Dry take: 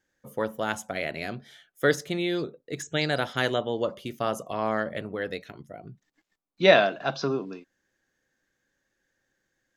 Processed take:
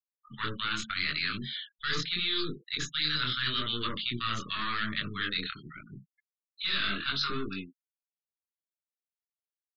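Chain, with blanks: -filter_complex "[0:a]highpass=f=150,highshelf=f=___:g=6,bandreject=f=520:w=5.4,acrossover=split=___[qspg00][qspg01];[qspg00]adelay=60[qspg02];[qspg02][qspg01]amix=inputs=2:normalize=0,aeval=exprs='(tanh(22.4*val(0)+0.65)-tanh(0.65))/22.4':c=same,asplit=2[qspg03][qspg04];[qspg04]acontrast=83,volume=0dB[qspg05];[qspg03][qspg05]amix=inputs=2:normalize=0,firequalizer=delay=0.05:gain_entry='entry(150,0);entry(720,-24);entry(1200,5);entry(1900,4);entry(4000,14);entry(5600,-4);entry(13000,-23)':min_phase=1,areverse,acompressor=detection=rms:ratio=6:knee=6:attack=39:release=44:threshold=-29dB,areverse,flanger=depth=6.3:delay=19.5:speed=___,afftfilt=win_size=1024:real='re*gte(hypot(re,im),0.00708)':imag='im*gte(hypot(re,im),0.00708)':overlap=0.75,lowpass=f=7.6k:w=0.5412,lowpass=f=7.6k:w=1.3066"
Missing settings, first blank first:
5.3k, 660, 0.81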